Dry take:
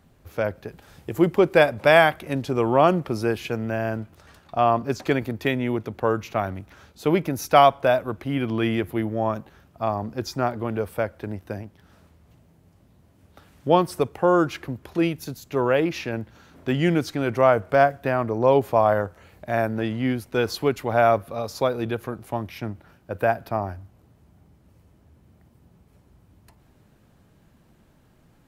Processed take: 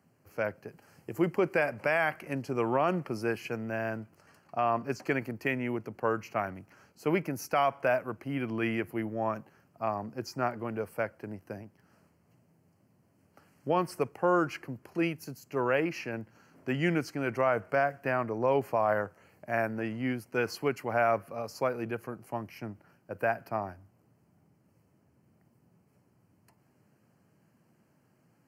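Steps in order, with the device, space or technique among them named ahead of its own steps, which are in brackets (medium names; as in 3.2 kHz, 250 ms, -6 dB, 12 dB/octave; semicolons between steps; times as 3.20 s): dynamic bell 2 kHz, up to +6 dB, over -35 dBFS, Q 0.78; PA system with an anti-feedback notch (high-pass 110 Hz 24 dB/octave; Butterworth band-stop 3.6 kHz, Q 2.8; peak limiter -8 dBFS, peak gain reduction 9 dB); trim -8 dB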